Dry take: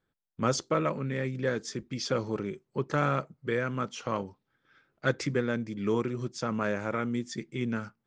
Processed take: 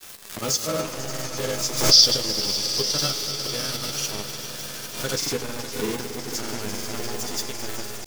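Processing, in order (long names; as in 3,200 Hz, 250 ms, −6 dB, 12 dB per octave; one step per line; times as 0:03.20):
converter with a step at zero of −35.5 dBFS
drawn EQ curve 430 Hz 0 dB, 950 Hz −3 dB, 1,900 Hz −6 dB, 5,100 Hz +14 dB
in parallel at +1 dB: output level in coarse steps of 13 dB
on the sum: gain on a spectral selection 0:01.88–0:03.86, 2,600–6,100 Hz +12 dB
bit reduction 4 bits
resonators tuned to a chord C#2 minor, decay 0.23 s
on a send: echo that builds up and dies away 105 ms, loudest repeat 5, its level −13.5 dB
on the sum: granular cloud 100 ms, pitch spread up and down by 0 semitones
background raised ahead of every attack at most 84 dB per second
level +3 dB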